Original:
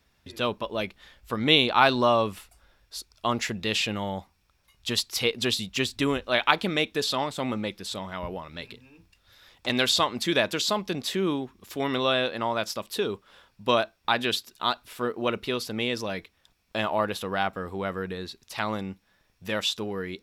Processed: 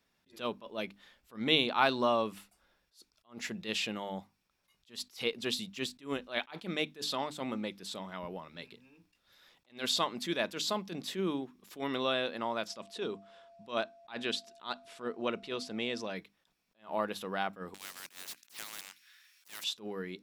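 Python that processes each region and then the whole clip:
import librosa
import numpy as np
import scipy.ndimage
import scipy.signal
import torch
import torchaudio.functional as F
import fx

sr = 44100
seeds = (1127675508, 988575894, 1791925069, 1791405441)

y = fx.lowpass(x, sr, hz=9100.0, slope=24, at=(12.67, 16.14), fade=0.02)
y = fx.dmg_tone(y, sr, hz=680.0, level_db=-48.0, at=(12.67, 16.14), fade=0.02)
y = fx.chain(y, sr, fx.cheby2_highpass(hz=470.0, order=4, stop_db=60),
    fx.leveller(passes=2),
    fx.spectral_comp(ratio=4.0), at=(17.74, 19.64))
y = fx.low_shelf_res(y, sr, hz=130.0, db=-8.5, q=1.5)
y = fx.hum_notches(y, sr, base_hz=50, count=6)
y = fx.attack_slew(y, sr, db_per_s=220.0)
y = F.gain(torch.from_numpy(y), -7.5).numpy()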